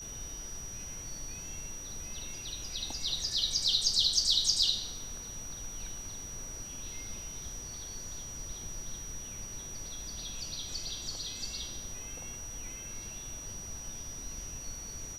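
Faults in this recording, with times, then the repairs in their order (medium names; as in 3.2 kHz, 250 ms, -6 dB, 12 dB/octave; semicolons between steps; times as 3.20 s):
whine 5.8 kHz -42 dBFS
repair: band-stop 5.8 kHz, Q 30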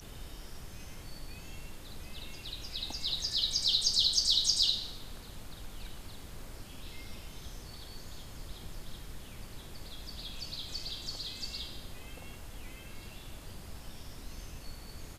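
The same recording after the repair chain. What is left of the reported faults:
nothing left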